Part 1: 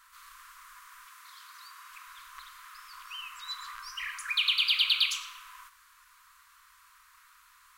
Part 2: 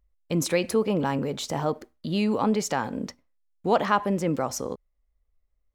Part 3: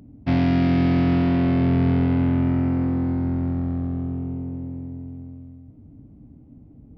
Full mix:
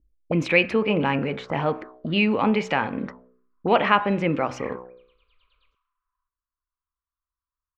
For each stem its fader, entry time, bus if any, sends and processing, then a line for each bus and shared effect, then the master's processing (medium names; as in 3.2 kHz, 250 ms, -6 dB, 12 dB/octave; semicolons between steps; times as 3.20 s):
-14.0 dB, 0.60 s, no send, none
+2.5 dB, 0.00 s, no send, de-hum 62.76 Hz, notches 29
mute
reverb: none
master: touch-sensitive low-pass 310–2500 Hz up, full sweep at -23.5 dBFS